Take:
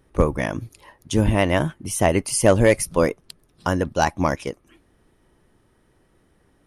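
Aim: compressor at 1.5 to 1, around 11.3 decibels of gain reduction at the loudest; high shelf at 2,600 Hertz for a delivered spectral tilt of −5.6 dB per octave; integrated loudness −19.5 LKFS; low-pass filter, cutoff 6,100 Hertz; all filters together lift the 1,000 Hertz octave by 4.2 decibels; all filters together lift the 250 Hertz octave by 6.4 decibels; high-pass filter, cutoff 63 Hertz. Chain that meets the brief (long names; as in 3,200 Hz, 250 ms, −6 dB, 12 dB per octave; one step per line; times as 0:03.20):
high-pass filter 63 Hz
low-pass filter 6,100 Hz
parametric band 250 Hz +8 dB
parametric band 1,000 Hz +4.5 dB
high-shelf EQ 2,600 Hz +3.5 dB
downward compressor 1.5 to 1, threshold −40 dBFS
level +8.5 dB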